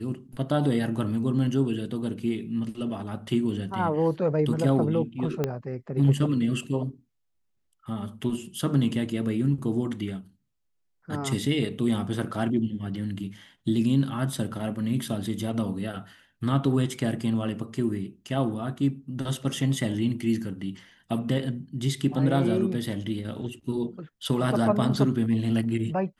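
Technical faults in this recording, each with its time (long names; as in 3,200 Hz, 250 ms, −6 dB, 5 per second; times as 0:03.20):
0:05.44: click −13 dBFS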